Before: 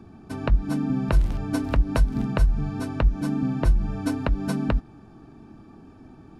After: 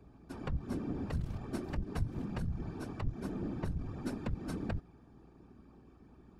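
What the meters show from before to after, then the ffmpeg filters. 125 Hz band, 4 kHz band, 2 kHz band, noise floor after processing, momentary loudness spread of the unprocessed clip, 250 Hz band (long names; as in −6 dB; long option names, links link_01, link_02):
−12.5 dB, −14.0 dB, −14.5 dB, −60 dBFS, 5 LU, −13.0 dB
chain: -af "aeval=exprs='(tanh(7.94*val(0)+0.45)-tanh(0.45))/7.94':channel_layout=same,afftfilt=real='hypot(re,im)*cos(2*PI*random(0))':imag='hypot(re,im)*sin(2*PI*random(1))':win_size=512:overlap=0.75,aeval=exprs='val(0)+0.00126*(sin(2*PI*60*n/s)+sin(2*PI*2*60*n/s)/2+sin(2*PI*3*60*n/s)/3+sin(2*PI*4*60*n/s)/4+sin(2*PI*5*60*n/s)/5)':channel_layout=same,volume=-4.5dB"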